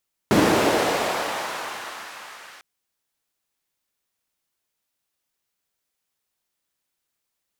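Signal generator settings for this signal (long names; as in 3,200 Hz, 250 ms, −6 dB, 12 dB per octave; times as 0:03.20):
filter sweep on noise white, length 2.30 s bandpass, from 230 Hz, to 1,400 Hz, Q 1.1, linear, gain ramp −36.5 dB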